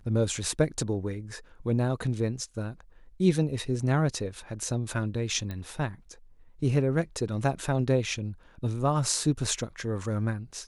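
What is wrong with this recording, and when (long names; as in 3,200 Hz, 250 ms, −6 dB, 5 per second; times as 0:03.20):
0:05.51: click −23 dBFS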